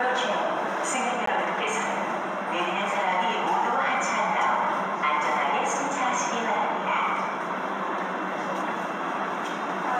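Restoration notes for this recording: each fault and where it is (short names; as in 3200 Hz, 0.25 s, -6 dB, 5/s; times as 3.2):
1.26–1.27 gap 14 ms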